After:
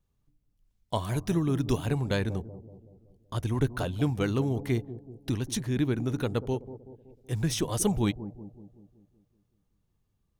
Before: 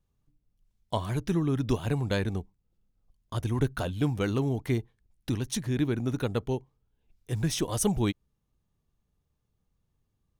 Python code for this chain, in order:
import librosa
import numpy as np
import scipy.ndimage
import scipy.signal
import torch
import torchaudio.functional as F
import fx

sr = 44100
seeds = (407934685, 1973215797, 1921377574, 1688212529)

y = fx.high_shelf(x, sr, hz=6500.0, db=7.0, at=(0.95, 1.86))
y = fx.echo_bbd(y, sr, ms=188, stages=1024, feedback_pct=53, wet_db=-13.5)